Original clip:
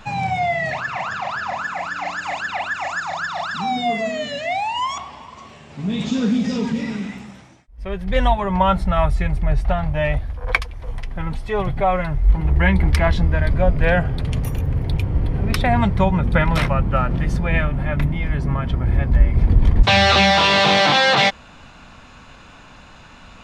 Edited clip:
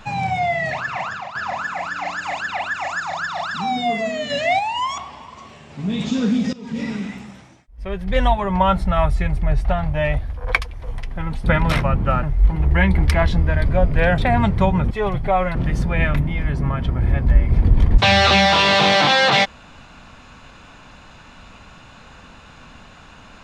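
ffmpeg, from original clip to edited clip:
-filter_complex "[0:a]asplit=11[a][b][c][d][e][f][g][h][i][j][k];[a]atrim=end=1.35,asetpts=PTS-STARTPTS,afade=t=out:st=1.02:d=0.33:silence=0.316228[l];[b]atrim=start=1.35:end=4.302,asetpts=PTS-STARTPTS,afade=t=in:d=0.004:c=hsin:silence=0.316228[m];[c]atrim=start=4.298:end=4.592,asetpts=PTS-STARTPTS,volume=5dB[n];[d]atrim=start=4.588:end=6.53,asetpts=PTS-STARTPTS,afade=t=out:st=1.938:d=0.004:c=hsin:silence=0.11885[o];[e]atrim=start=6.53:end=11.442,asetpts=PTS-STARTPTS,afade=t=in:d=0.28:c=qua:silence=0.11885[p];[f]atrim=start=16.298:end=17.092[q];[g]atrim=start=12.078:end=14.032[r];[h]atrim=start=15.568:end=16.302[s];[i]atrim=start=11.438:end=12.082[t];[j]atrim=start=17.088:end=17.682[u];[k]atrim=start=17.988[v];[l][m]concat=n=2:v=0:a=1[w];[w][n]acrossfade=d=0.004:c1=hsin:c2=hsin[x];[o][p]concat=n=2:v=0:a=1[y];[x][y]acrossfade=d=0.004:c1=hsin:c2=hsin[z];[z][q]acrossfade=d=0.004:c1=hsin:c2=hsin[aa];[aa][r]acrossfade=d=0.004:c1=hsin:c2=hsin[ab];[ab][s]acrossfade=d=0.004:c1=hsin:c2=hsin[ac];[ac][t]acrossfade=d=0.004:c1=hsin:c2=hsin[ad];[ad][u]acrossfade=d=0.004:c1=hsin:c2=hsin[ae];[ae][v]acrossfade=d=0.004:c1=hsin:c2=hsin"

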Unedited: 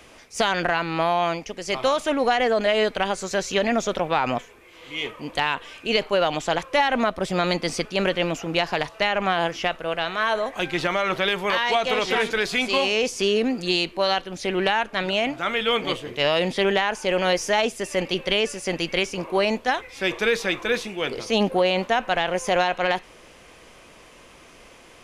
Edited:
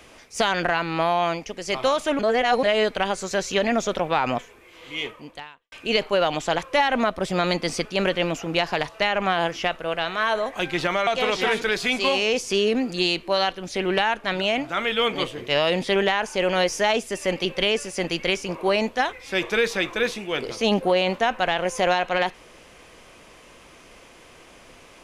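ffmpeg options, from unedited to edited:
-filter_complex "[0:a]asplit=5[a][b][c][d][e];[a]atrim=end=2.192[f];[b]atrim=start=2.188:end=2.632,asetpts=PTS-STARTPTS,areverse[g];[c]atrim=start=2.628:end=5.72,asetpts=PTS-STARTPTS,afade=t=out:st=2.372:d=0.72:c=qua[h];[d]atrim=start=5.72:end=11.072,asetpts=PTS-STARTPTS,afade=t=in:d=0.004:c=hsin[i];[e]atrim=start=11.758[j];[f][g]acrossfade=d=0.004:c1=hsin:c2=hsin[k];[h][i]concat=n=2:v=0:a=1[l];[k][l]acrossfade=d=0.004:c1=hsin:c2=hsin[m];[m][j]acrossfade=d=0.004:c1=hsin:c2=hsin"

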